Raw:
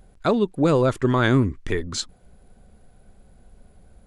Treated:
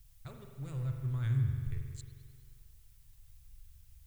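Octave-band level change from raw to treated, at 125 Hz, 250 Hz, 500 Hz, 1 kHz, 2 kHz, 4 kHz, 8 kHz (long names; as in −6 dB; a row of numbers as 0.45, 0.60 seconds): −8.0 dB, −23.5 dB, −33.5 dB, below −25 dB, −26.5 dB, below −25 dB, −21.5 dB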